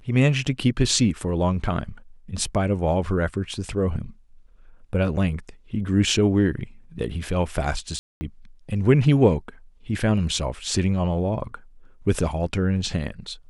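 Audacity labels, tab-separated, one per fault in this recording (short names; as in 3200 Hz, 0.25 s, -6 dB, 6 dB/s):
7.990000	8.210000	gap 0.22 s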